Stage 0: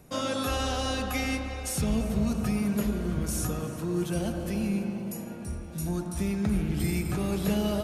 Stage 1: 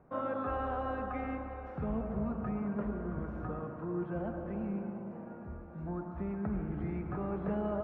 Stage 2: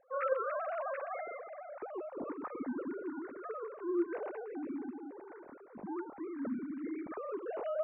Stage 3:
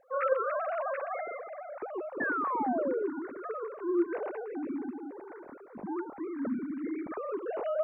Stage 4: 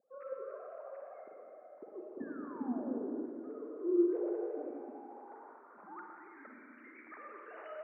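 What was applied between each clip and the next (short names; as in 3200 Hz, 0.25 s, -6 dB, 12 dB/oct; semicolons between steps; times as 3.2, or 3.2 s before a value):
LPF 1400 Hz 24 dB/oct; low shelf 450 Hz -10 dB
sine-wave speech; gain -2.5 dB
painted sound fall, 2.2–3.08, 380–1800 Hz -36 dBFS; gain +4.5 dB
Schroeder reverb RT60 2.5 s, DRR 0 dB; band-pass sweep 230 Hz -> 1900 Hz, 3.39–6.47; gain -2 dB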